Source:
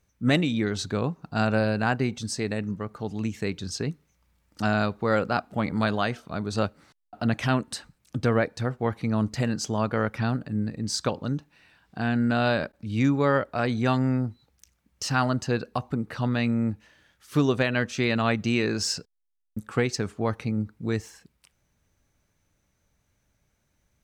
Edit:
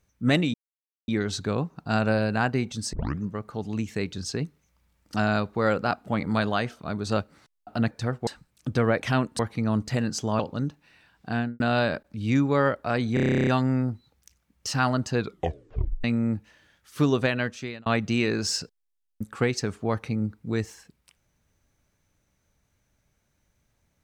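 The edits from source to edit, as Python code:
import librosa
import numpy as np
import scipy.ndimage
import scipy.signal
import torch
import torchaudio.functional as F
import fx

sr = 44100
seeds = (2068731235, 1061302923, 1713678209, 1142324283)

y = fx.studio_fade_out(x, sr, start_s=12.04, length_s=0.25)
y = fx.edit(y, sr, fx.insert_silence(at_s=0.54, length_s=0.54),
    fx.tape_start(start_s=2.39, length_s=0.28),
    fx.swap(start_s=7.37, length_s=0.38, other_s=8.49, other_length_s=0.36),
    fx.cut(start_s=9.85, length_s=1.23),
    fx.stutter(start_s=13.83, slice_s=0.03, count=12),
    fx.tape_stop(start_s=15.54, length_s=0.86),
    fx.fade_out_span(start_s=17.65, length_s=0.57), tone=tone)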